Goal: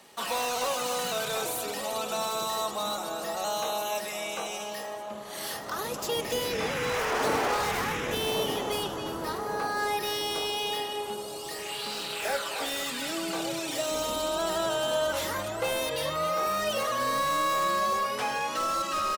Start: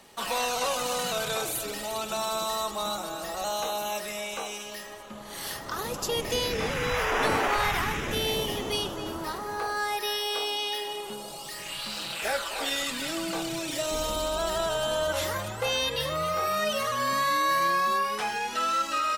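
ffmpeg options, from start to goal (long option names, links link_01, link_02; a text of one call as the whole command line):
ffmpeg -i in.wav -filter_complex "[0:a]highpass=frequency=170:poles=1,acrossover=split=1100[link_01][link_02];[link_01]aecho=1:1:1151|2302|3453|4604|5755:0.473|0.203|0.0875|0.0376|0.0162[link_03];[link_02]aeval=exprs='0.0355*(abs(mod(val(0)/0.0355+3,4)-2)-1)':channel_layout=same[link_04];[link_03][link_04]amix=inputs=2:normalize=0" out.wav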